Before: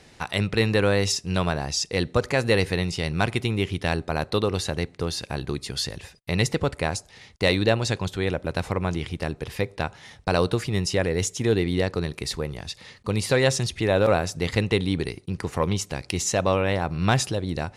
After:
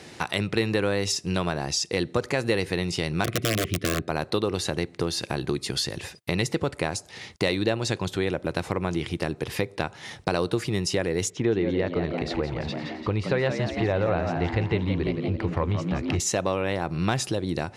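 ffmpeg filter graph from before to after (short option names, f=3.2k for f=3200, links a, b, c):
-filter_complex "[0:a]asettb=1/sr,asplit=3[a][b][c];[a]atrim=end=3.244[d];[b]atrim=start=3.24:end=4.08,asetpts=PTS-STARTPTS,afade=t=in:d=0.004:c=qsin,afade=t=out:st=0.836:d=0.004:c=qsin,bass=f=250:g=6,treble=f=4k:g=-7,aeval=exprs='(mod(5.01*val(0)+1,2)-1)/5.01':c=same,asuperstop=centerf=880:order=12:qfactor=2.6[e];[c]atrim=start=4.076[f];[d][e]acrossfade=d=0.004:c1=hsin:c2=qsin[g];[g][f]acrossfade=d=0.004:c1=qsin:c2=hsin,asettb=1/sr,asplit=3[h][i][j];[h]atrim=end=11.304[k];[i]atrim=start=11.3:end=16.2,asetpts=PTS-STARTPTS,afade=t=in:d=0.004:c=qsin,afade=t=out:st=4.896:d=0.004:c=qsin,lowpass=2.6k,asubboost=boost=9.5:cutoff=71,asplit=7[l][m][n][o][p][q][r];[m]adelay=171,afreqshift=80,volume=-8.5dB[s];[n]adelay=342,afreqshift=160,volume=-14.3dB[t];[o]adelay=513,afreqshift=240,volume=-20.2dB[u];[p]adelay=684,afreqshift=320,volume=-26dB[v];[q]adelay=855,afreqshift=400,volume=-31.9dB[w];[r]adelay=1026,afreqshift=480,volume=-37.7dB[x];[l][s][t][u][v][w][x]amix=inputs=7:normalize=0,atrim=end_sample=216090[y];[j]atrim=start=16.196[z];[k][y]acrossfade=d=0.004:c1=hsin:c2=qsin[aa];[aa][z]acrossfade=d=0.004:c1=qsin:c2=hsin,highpass=100,acompressor=threshold=-34dB:ratio=2.5,equalizer=f=340:t=o:w=0.27:g=5.5,volume=7dB"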